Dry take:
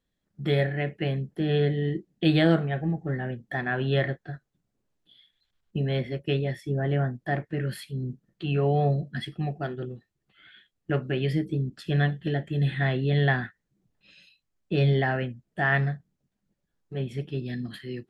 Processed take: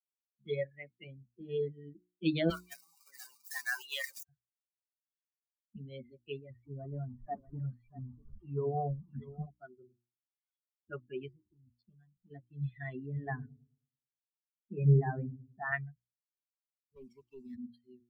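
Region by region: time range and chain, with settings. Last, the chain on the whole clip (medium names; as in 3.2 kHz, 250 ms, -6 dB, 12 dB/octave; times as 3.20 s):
2.50–4.23 s: jump at every zero crossing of -29.5 dBFS + high-pass 650 Hz 6 dB/octave + tilt EQ +3 dB/octave
6.50–9.46 s: jump at every zero crossing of -32.5 dBFS + low-pass 1.5 kHz + delay 640 ms -6.5 dB
11.28–12.31 s: compression 5:1, threshold -29 dBFS + hysteresis with a dead band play -38 dBFS
13.06–15.72 s: low-pass 1.8 kHz + feedback echo behind a low-pass 107 ms, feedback 67%, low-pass 430 Hz, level -4.5 dB
16.96–17.56 s: send-on-delta sampling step -45.5 dBFS + high-pass 310 Hz 6 dB/octave + waveshaping leveller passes 2
whole clip: expander on every frequency bin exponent 3; bass shelf 110 Hz +7 dB; hum notches 60/120/180/240/300/360 Hz; trim -4.5 dB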